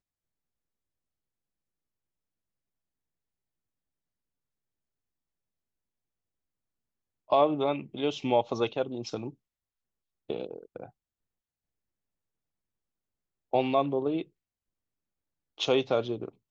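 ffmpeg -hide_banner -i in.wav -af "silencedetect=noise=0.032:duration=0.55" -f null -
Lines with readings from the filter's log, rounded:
silence_start: 0.00
silence_end: 7.32 | silence_duration: 7.32
silence_start: 9.27
silence_end: 10.30 | silence_duration: 1.03
silence_start: 10.84
silence_end: 13.54 | silence_duration: 2.70
silence_start: 14.22
silence_end: 15.61 | silence_duration: 1.39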